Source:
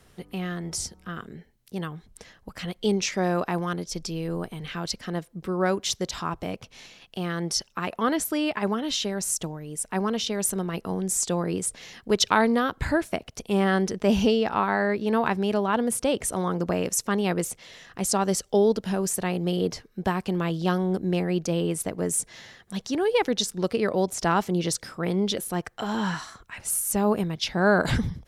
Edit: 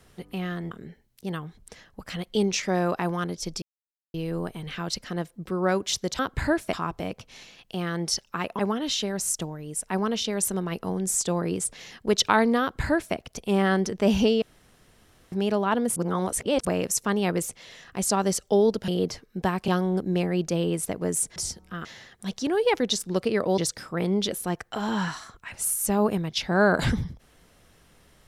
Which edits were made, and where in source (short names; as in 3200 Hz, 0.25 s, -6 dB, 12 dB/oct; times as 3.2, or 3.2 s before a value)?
0.71–1.2 move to 22.33
4.11 insert silence 0.52 s
8.02–8.61 cut
12.63–13.17 copy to 6.16
14.44–15.34 room tone
15.98–16.67 reverse
18.9–19.5 cut
20.3–20.65 cut
24.06–24.64 cut